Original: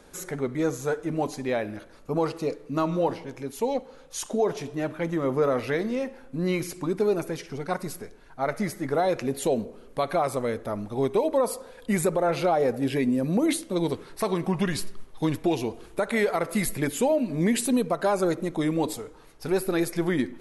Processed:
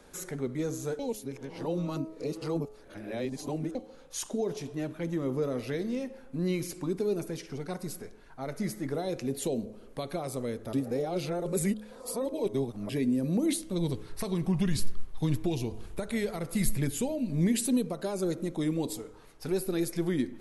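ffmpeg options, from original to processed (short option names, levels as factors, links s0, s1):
-filter_complex "[0:a]asplit=3[s0][s1][s2];[s0]afade=t=out:st=13.61:d=0.02[s3];[s1]asubboost=boost=3:cutoff=150,afade=t=in:st=13.61:d=0.02,afade=t=out:st=17.49:d=0.02[s4];[s2]afade=t=in:st=17.49:d=0.02[s5];[s3][s4][s5]amix=inputs=3:normalize=0,asplit=5[s6][s7][s8][s9][s10];[s6]atrim=end=0.992[s11];[s7]atrim=start=0.988:end=3.752,asetpts=PTS-STARTPTS,areverse[s12];[s8]atrim=start=3.748:end=10.732[s13];[s9]atrim=start=10.728:end=12.892,asetpts=PTS-STARTPTS,areverse[s14];[s10]atrim=start=12.888[s15];[s11][s12]acrossfade=d=0.004:c1=hsin:c2=hsin[s16];[s16][s13]acrossfade=d=0.004:c1=hsin:c2=hsin[s17];[s17][s14]acrossfade=d=0.004:c1=hsin:c2=hsin[s18];[s18][s15]acrossfade=d=0.004:c1=hsin:c2=hsin,bandreject=f=106.5:t=h:w=4,bandreject=f=213:t=h:w=4,bandreject=f=319.5:t=h:w=4,bandreject=f=426:t=h:w=4,bandreject=f=532.5:t=h:w=4,bandreject=f=639:t=h:w=4,bandreject=f=745.5:t=h:w=4,bandreject=f=852:t=h:w=4,bandreject=f=958.5:t=h:w=4,bandreject=f=1065:t=h:w=4,bandreject=f=1171.5:t=h:w=4,bandreject=f=1278:t=h:w=4,bandreject=f=1384.5:t=h:w=4,bandreject=f=1491:t=h:w=4,bandreject=f=1597.5:t=h:w=4,acrossover=split=440|3000[s19][s20][s21];[s20]acompressor=threshold=0.00562:ratio=2.5[s22];[s19][s22][s21]amix=inputs=3:normalize=0,volume=0.75"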